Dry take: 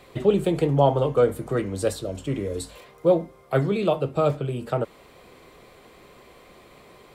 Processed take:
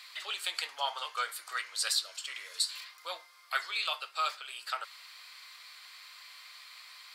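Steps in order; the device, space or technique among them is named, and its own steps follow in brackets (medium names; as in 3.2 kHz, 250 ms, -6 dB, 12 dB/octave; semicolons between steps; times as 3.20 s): headphones lying on a table (high-pass 1.3 kHz 24 dB/octave; peaking EQ 4.6 kHz +12 dB 0.51 oct); trim +2.5 dB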